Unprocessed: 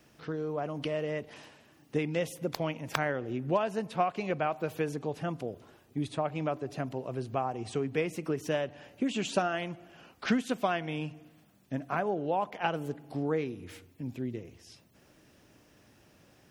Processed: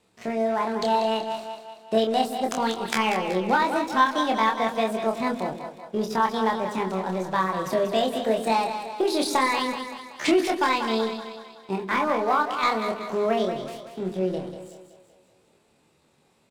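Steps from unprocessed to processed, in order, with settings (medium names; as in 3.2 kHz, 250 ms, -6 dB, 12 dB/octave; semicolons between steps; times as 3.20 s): low-pass 8.1 kHz 24 dB/octave; waveshaping leveller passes 2; pitch shift +6.5 st; doubling 27 ms -4 dB; two-band feedback delay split 490 Hz, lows 114 ms, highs 189 ms, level -8.5 dB; trim -1 dB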